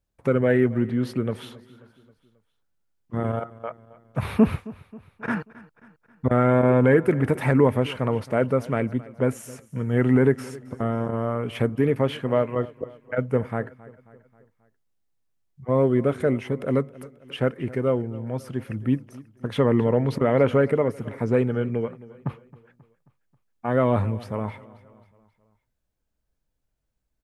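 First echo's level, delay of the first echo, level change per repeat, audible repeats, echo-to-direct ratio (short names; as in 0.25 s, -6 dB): -20.0 dB, 0.268 s, -5.5 dB, 3, -18.5 dB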